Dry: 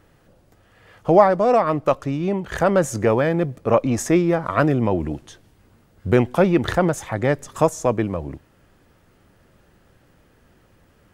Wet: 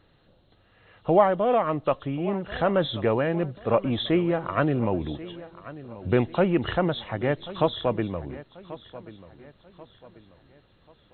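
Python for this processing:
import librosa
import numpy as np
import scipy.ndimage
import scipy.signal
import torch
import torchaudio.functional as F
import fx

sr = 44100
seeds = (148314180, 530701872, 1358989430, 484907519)

p1 = fx.freq_compress(x, sr, knee_hz=2700.0, ratio=4.0)
p2 = p1 + fx.echo_feedback(p1, sr, ms=1087, feedback_pct=39, wet_db=-17, dry=0)
y = p2 * 10.0 ** (-5.5 / 20.0)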